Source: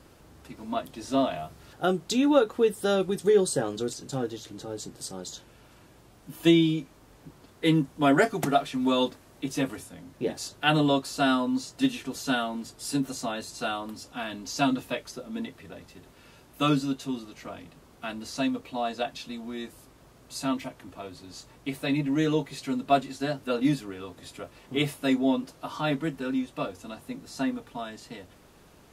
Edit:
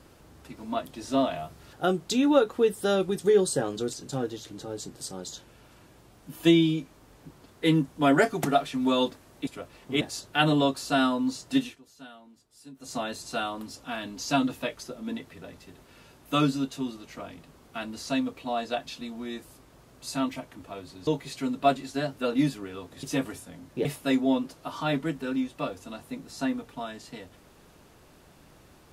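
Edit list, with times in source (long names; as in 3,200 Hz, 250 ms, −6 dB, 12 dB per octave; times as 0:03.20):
0:09.47–0:10.29: swap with 0:24.29–0:24.83
0:11.89–0:13.24: duck −20 dB, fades 0.17 s
0:21.35–0:22.33: remove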